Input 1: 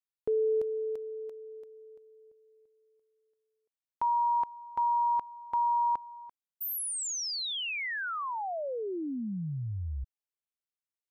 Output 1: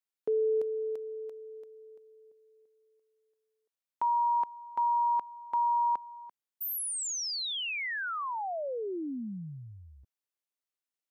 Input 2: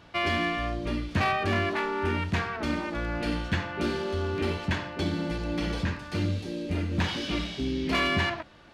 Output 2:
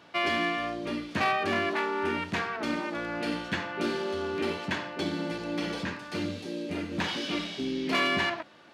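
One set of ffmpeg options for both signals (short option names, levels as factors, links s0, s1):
-af "highpass=210"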